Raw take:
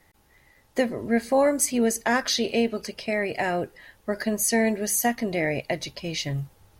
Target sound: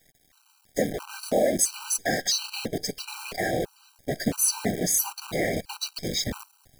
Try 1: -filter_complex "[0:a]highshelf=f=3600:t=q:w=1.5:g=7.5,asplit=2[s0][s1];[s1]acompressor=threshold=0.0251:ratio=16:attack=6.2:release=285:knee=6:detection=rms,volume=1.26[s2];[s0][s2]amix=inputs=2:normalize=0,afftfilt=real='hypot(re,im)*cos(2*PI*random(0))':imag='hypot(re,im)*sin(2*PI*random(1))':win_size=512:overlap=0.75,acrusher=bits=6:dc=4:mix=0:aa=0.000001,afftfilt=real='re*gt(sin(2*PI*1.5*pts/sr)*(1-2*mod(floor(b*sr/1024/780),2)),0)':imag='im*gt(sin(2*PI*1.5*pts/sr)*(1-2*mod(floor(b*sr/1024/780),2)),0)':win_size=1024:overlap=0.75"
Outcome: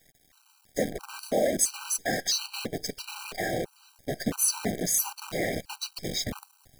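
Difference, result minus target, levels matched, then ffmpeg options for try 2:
compression: peak gain reduction +10.5 dB
-filter_complex "[0:a]highshelf=f=3600:t=q:w=1.5:g=7.5,asplit=2[s0][s1];[s1]acompressor=threshold=0.0891:ratio=16:attack=6.2:release=285:knee=6:detection=rms,volume=1.26[s2];[s0][s2]amix=inputs=2:normalize=0,afftfilt=real='hypot(re,im)*cos(2*PI*random(0))':imag='hypot(re,im)*sin(2*PI*random(1))':win_size=512:overlap=0.75,acrusher=bits=6:dc=4:mix=0:aa=0.000001,afftfilt=real='re*gt(sin(2*PI*1.5*pts/sr)*(1-2*mod(floor(b*sr/1024/780),2)),0)':imag='im*gt(sin(2*PI*1.5*pts/sr)*(1-2*mod(floor(b*sr/1024/780),2)),0)':win_size=1024:overlap=0.75"

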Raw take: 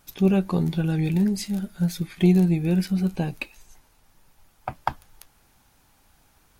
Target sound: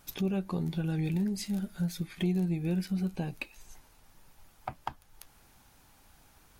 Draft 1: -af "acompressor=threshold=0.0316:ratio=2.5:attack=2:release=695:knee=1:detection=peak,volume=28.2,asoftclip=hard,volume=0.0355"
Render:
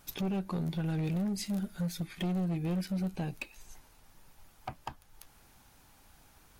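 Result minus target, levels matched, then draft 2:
overload inside the chain: distortion +21 dB
-af "acompressor=threshold=0.0316:ratio=2.5:attack=2:release=695:knee=1:detection=peak,volume=11.2,asoftclip=hard,volume=0.0891"

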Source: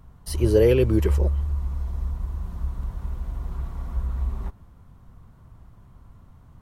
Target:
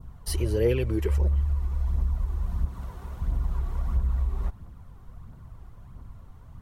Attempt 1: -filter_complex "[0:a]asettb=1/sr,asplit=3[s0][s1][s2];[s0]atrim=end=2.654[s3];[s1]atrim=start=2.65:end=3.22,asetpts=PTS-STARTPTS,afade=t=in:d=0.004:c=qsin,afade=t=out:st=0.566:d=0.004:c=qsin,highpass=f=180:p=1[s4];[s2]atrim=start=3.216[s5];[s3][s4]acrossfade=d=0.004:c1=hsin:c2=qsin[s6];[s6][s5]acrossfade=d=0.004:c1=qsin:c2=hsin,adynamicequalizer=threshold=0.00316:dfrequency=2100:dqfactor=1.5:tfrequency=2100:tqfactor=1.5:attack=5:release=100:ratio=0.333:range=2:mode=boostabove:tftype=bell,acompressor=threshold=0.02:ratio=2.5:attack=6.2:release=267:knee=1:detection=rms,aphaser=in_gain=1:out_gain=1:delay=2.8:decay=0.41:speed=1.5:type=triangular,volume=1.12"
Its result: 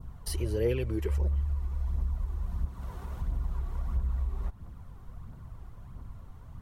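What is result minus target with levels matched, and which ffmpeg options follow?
compression: peak gain reduction +5 dB
-filter_complex "[0:a]asettb=1/sr,asplit=3[s0][s1][s2];[s0]atrim=end=2.654[s3];[s1]atrim=start=2.65:end=3.22,asetpts=PTS-STARTPTS,afade=t=in:d=0.004:c=qsin,afade=t=out:st=0.566:d=0.004:c=qsin,highpass=f=180:p=1[s4];[s2]atrim=start=3.216[s5];[s3][s4]acrossfade=d=0.004:c1=hsin:c2=qsin[s6];[s6][s5]acrossfade=d=0.004:c1=qsin:c2=hsin,adynamicequalizer=threshold=0.00316:dfrequency=2100:dqfactor=1.5:tfrequency=2100:tqfactor=1.5:attack=5:release=100:ratio=0.333:range=2:mode=boostabove:tftype=bell,acompressor=threshold=0.0501:ratio=2.5:attack=6.2:release=267:knee=1:detection=rms,aphaser=in_gain=1:out_gain=1:delay=2.8:decay=0.41:speed=1.5:type=triangular,volume=1.12"

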